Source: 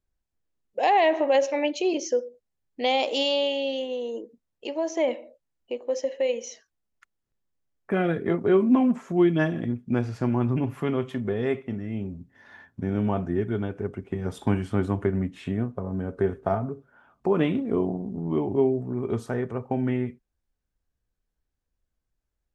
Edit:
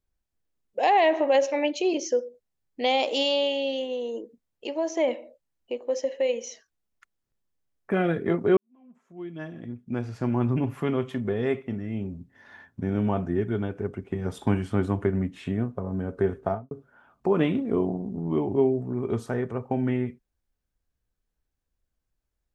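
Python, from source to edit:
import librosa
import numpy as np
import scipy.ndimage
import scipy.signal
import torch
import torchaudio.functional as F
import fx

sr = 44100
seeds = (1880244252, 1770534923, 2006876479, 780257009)

y = fx.studio_fade_out(x, sr, start_s=16.42, length_s=0.29)
y = fx.edit(y, sr, fx.fade_in_span(start_s=8.57, length_s=1.87, curve='qua'), tone=tone)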